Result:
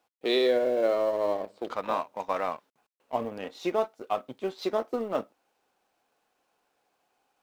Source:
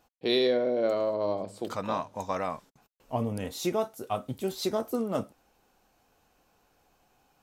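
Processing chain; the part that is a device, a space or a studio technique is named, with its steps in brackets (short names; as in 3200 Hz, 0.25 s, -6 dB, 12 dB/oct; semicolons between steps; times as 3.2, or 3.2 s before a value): phone line with mismatched companding (BPF 330–3400 Hz; G.711 law mismatch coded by A); gain +3.5 dB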